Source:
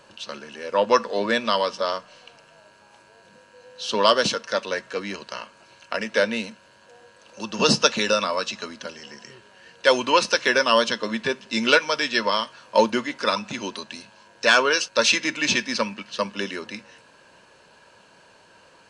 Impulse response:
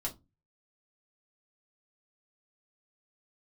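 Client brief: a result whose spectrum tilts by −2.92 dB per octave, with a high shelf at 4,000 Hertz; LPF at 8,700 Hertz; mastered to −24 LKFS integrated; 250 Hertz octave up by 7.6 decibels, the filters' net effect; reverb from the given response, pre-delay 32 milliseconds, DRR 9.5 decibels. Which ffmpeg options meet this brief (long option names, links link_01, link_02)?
-filter_complex "[0:a]lowpass=8700,equalizer=frequency=250:width_type=o:gain=9,highshelf=frequency=4000:gain=5.5,asplit=2[link_01][link_02];[1:a]atrim=start_sample=2205,adelay=32[link_03];[link_02][link_03]afir=irnorm=-1:irlink=0,volume=-10.5dB[link_04];[link_01][link_04]amix=inputs=2:normalize=0,volume=-4.5dB"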